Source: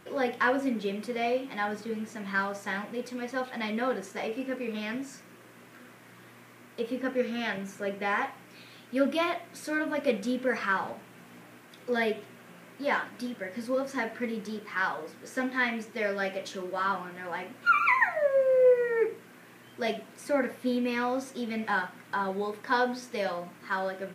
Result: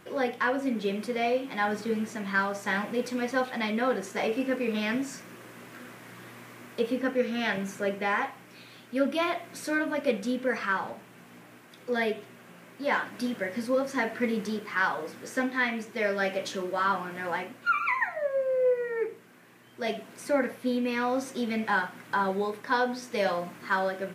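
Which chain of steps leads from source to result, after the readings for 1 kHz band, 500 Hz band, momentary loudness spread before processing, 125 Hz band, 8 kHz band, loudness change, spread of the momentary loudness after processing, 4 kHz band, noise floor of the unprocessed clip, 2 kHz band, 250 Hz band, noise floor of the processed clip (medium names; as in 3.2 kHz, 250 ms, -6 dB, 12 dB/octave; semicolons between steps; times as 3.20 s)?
+1.0 dB, 0.0 dB, 12 LU, +3.0 dB, +3.0 dB, +0.5 dB, 10 LU, +2.0 dB, -53 dBFS, +1.0 dB, +2.0 dB, -52 dBFS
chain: gain riding within 5 dB 0.5 s; trim +1 dB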